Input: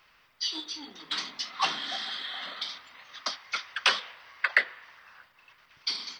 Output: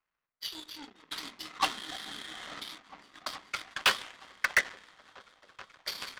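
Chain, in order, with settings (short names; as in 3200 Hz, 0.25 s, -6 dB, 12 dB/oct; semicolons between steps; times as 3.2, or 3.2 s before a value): low-pass opened by the level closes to 1900 Hz, open at -25 dBFS; high shelf 8300 Hz -9.5 dB; in parallel at -1.5 dB: negative-ratio compressor -43 dBFS, ratio -1; on the sum: repeats that get brighter 0.432 s, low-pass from 200 Hz, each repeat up 1 oct, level 0 dB; hard clip -17 dBFS, distortion -14 dB; power-law curve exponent 2; gain +2 dB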